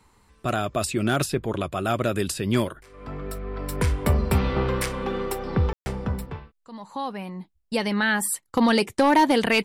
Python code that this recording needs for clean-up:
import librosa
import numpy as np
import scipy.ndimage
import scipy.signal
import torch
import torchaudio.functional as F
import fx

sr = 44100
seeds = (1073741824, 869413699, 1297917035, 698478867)

y = fx.fix_declip(x, sr, threshold_db=-11.5)
y = fx.fix_ambience(y, sr, seeds[0], print_start_s=0.0, print_end_s=0.5, start_s=5.73, end_s=5.86)